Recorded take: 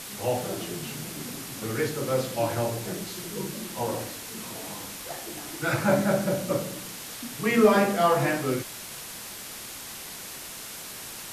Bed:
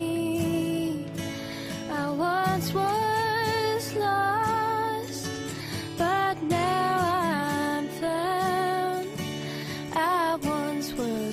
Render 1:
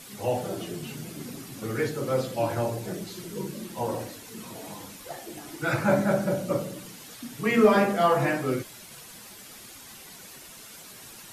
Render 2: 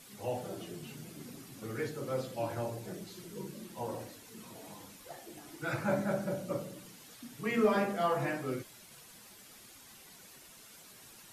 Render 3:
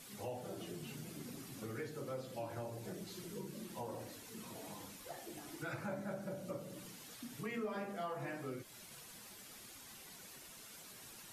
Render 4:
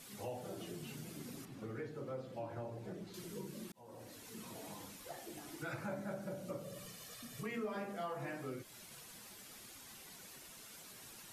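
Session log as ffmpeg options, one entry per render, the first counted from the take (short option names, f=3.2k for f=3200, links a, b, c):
-af "afftdn=nr=9:nf=-40"
-af "volume=-9dB"
-af "acompressor=threshold=-43dB:ratio=3"
-filter_complex "[0:a]asettb=1/sr,asplit=3[a][b][c];[a]atrim=end=1.454[d];[b]atrim=start=1.45:end=3.14,asetpts=PTS-STARTPTS,afade=t=in:d=0.004:c=qsin,afade=t=out:st=1.686:d=0.004:c=qsin,lowpass=f=1.8k:p=1[e];[c]atrim=start=3.136[f];[d][e]acrossfade=d=0.004:c1=hsin:c2=qsin[g];[g][f]acrossfade=d=0.004:c1=qsin:c2=hsin,asettb=1/sr,asplit=3[h][i][j];[h]atrim=end=6.644[k];[i]atrim=start=6.64:end=7.43,asetpts=PTS-STARTPTS,afade=t=in:d=0.004:c=qsin,afade=t=out:st=0.786:d=0.004:c=qsin,aecho=1:1:1.7:0.64,atrim=end_sample=34839[l];[j]atrim=start=7.426[m];[k][l]acrossfade=d=0.004:c1=hsin:c2=qsin[n];[n][m]acrossfade=d=0.004:c1=qsin:c2=hsin,asplit=2[o][p];[o]atrim=end=3.72,asetpts=PTS-STARTPTS,afade=t=out:st=3.716:d=0.004:c=hsin[q];[p]atrim=start=3.72,asetpts=PTS-STARTPTS,afade=t=in:d=0.55[r];[q][r]concat=n=2:v=0:a=1"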